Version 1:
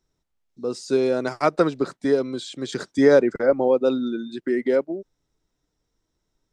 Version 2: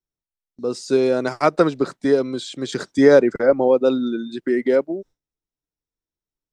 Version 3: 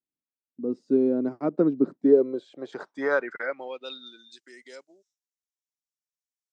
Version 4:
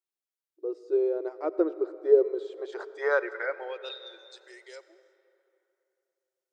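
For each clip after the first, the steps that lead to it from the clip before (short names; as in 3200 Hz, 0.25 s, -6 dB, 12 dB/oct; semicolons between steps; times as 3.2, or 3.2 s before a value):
gate with hold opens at -44 dBFS; gain +3 dB
vocal rider 2 s; band-pass sweep 260 Hz -> 6700 Hz, 1.89–4.43
brick-wall FIR high-pass 320 Hz; digital reverb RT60 3.1 s, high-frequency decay 0.6×, pre-delay 45 ms, DRR 14.5 dB; gain -1 dB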